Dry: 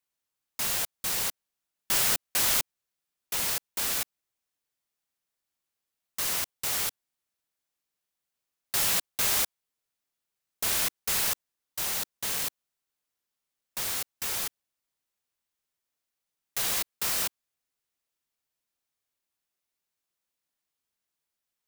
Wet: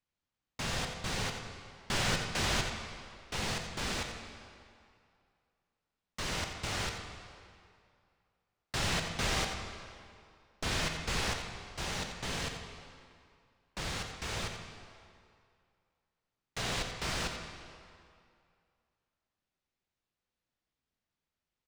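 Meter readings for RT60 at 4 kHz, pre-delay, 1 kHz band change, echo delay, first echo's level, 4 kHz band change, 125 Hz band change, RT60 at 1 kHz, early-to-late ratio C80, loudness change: 1.8 s, 14 ms, +0.5 dB, 88 ms, −9.0 dB, −3.5 dB, +9.5 dB, 2.4 s, 4.5 dB, −8.0 dB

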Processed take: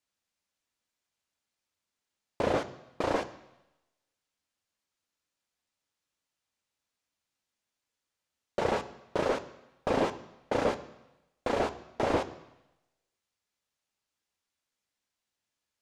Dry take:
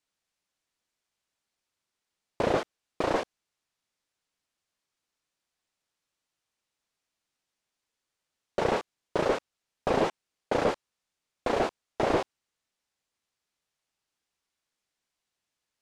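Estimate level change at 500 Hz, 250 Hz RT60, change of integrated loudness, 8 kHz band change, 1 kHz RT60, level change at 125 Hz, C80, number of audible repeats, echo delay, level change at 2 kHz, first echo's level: −2.0 dB, 0.90 s, −2.0 dB, −1.5 dB, 0.95 s, −1.5 dB, 17.0 dB, no echo audible, no echo audible, −2.0 dB, no echo audible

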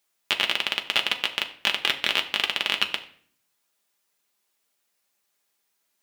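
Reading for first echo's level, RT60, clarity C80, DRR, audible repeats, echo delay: no echo audible, 0.55 s, 16.5 dB, 3.5 dB, no echo audible, no echo audible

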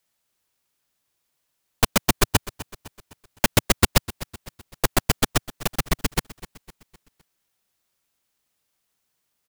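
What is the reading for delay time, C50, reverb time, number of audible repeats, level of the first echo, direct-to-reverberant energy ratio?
255 ms, no reverb audible, no reverb audible, 3, −17.5 dB, no reverb audible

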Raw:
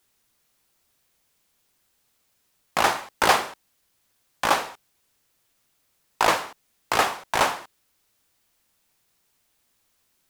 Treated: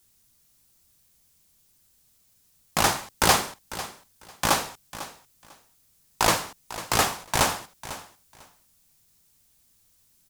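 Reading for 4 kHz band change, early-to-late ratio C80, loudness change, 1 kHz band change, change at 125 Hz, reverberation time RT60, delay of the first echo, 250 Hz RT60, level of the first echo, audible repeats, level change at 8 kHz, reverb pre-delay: +1.5 dB, no reverb audible, −1.5 dB, −2.5 dB, +9.0 dB, no reverb audible, 498 ms, no reverb audible, −15.0 dB, 2, +6.0 dB, no reverb audible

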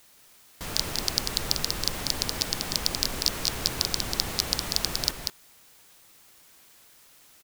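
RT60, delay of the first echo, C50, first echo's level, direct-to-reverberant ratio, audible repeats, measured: no reverb audible, 191 ms, no reverb audible, −4.5 dB, no reverb audible, 1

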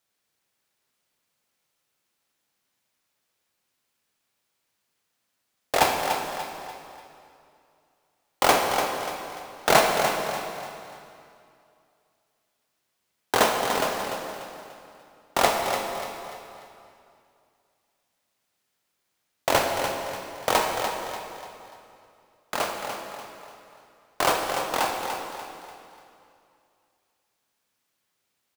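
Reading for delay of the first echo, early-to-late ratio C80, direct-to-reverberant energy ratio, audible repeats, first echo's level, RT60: 293 ms, 2.5 dB, 1.0 dB, 4, −8.0 dB, 2.6 s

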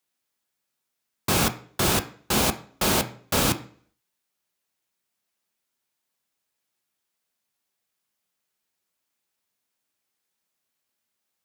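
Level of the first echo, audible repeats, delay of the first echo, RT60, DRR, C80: no echo audible, no echo audible, no echo audible, 0.50 s, 7.5 dB, 18.5 dB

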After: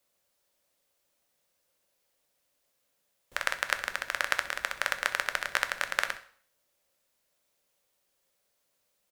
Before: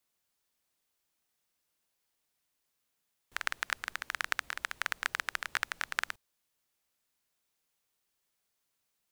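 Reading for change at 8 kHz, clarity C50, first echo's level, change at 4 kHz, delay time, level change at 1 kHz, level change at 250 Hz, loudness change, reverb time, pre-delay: +4.5 dB, 12.5 dB, −16.5 dB, +4.5 dB, 64 ms, +5.0 dB, +5.0 dB, +4.5 dB, 0.50 s, 4 ms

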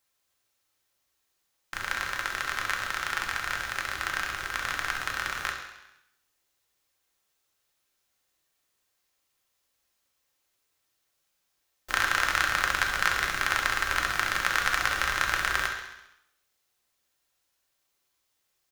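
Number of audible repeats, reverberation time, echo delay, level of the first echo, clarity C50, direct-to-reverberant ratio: 3, 0.90 s, 67 ms, −9.5 dB, 5.0 dB, 1.0 dB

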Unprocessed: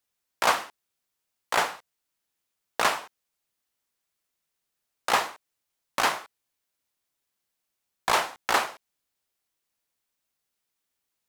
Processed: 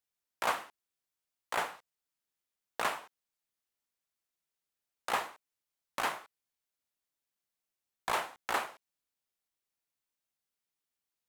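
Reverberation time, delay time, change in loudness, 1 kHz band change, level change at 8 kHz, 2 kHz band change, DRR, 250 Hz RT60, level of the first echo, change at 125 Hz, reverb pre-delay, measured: no reverb audible, no echo audible, −9.0 dB, −8.5 dB, −11.0 dB, −9.0 dB, no reverb audible, no reverb audible, no echo audible, −8.5 dB, no reverb audible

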